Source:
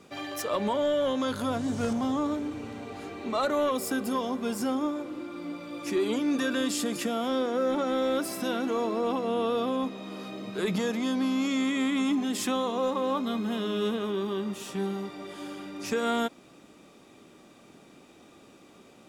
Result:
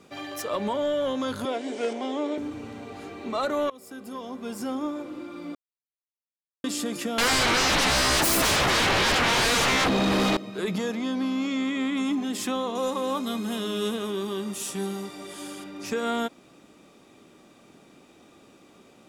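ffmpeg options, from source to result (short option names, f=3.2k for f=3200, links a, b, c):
-filter_complex "[0:a]asettb=1/sr,asplit=3[a][b][c];[a]atrim=end=1.454[d];[b]atrim=start=1.45:end=2.38,asetpts=PTS-STARTPTS,afade=t=in:d=0.004:c=qsin,afade=t=out:st=0.926:d=0.004:c=qsin,highpass=f=290:w=0.5412,highpass=f=290:w=1.3066,equalizer=f=410:t=q:w=4:g=9,equalizer=f=620:t=q:w=4:g=4,equalizer=f=1.2k:t=q:w=4:g=-7,equalizer=f=2.2k:t=q:w=4:g=9,equalizer=f=3.1k:t=q:w=4:g=5,equalizer=f=6.5k:t=q:w=4:g=-4,lowpass=f=9k:w=0.5412,lowpass=f=9k:w=1.3066[e];[c]atrim=start=2.376[f];[d][e]acrossfade=d=0.004:c1=hsin:c2=qsin[g];[g][f]acrossfade=d=0.004:c1=qsin:c2=hsin,asettb=1/sr,asplit=3[h][i][j];[h]atrim=end=7.184[k];[i]atrim=start=7.18:end=10.37,asetpts=PTS-STARTPTS,afade=t=in:d=0.004:c=qsin,afade=t=out:st=3.186:d=0.004:c=qsin,aeval=exprs='0.112*sin(PI/2*7.08*val(0)/0.112)':c=same[l];[j]atrim=start=10.366[m];[k][l]acrossfade=d=0.004:c1=hsin:c2=qsin[n];[n][m]acrossfade=d=0.004:c1=qsin:c2=hsin,asettb=1/sr,asplit=3[o][p][q];[o]atrim=end=10.934[r];[p]atrim=start=10.93:end=11.97,asetpts=PTS-STARTPTS,afade=t=in:d=0.004:c=qsin,afade=t=out:st=1.036:d=0.004:c=qsin,acrossover=split=5800[s][t];[t]acompressor=threshold=-56dB:ratio=4:attack=1:release=60[u];[s][u]amix=inputs=2:normalize=0[v];[q]atrim=start=11.966[w];[r][v]acrossfade=d=0.004:c1=hsin:c2=qsin[x];[x][w]acrossfade=d=0.004:c1=qsin:c2=hsin,asettb=1/sr,asplit=3[y][z][aa];[y]atrim=end=12.754[ab];[z]atrim=start=12.75:end=15.64,asetpts=PTS-STARTPTS,afade=t=in:d=0.004:c=qsin,afade=t=out:st=2.886:d=0.004:c=qsin,equalizer=f=9.8k:w=0.57:g=14[ac];[aa]atrim=start=15.636[ad];[ab][ac]acrossfade=d=0.004:c1=hsin:c2=qsin[ae];[ae][ad]acrossfade=d=0.004:c1=qsin:c2=hsin,asplit=4[af][ag][ah][ai];[af]atrim=end=3.7,asetpts=PTS-STARTPTS,afade=t=out:st=3.696:d=0.004:c=hsin:silence=0.0891251[aj];[ag]atrim=start=3.7:end=5.55,asetpts=PTS-STARTPTS,afade=t=in:d=1.3:silence=0.0891251,afade=t=out:st=1.846:d=0.004:c=hsin[ak];[ah]atrim=start=5.55:end=6.64,asetpts=PTS-STARTPTS,volume=0[al];[ai]atrim=start=6.64,asetpts=PTS-STARTPTS,afade=t=in:d=0.004:c=hsin[am];[aj][ak][al][am]concat=n=4:v=0:a=1"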